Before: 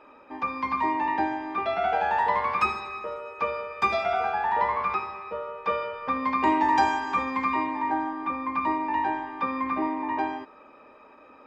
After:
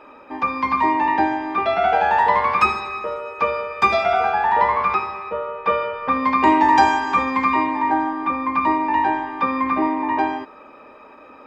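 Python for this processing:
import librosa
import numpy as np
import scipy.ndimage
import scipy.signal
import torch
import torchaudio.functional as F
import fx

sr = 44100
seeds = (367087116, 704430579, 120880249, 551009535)

y = fx.lowpass(x, sr, hz=3800.0, slope=12, at=(5.29, 6.12))
y = y * librosa.db_to_amplitude(7.5)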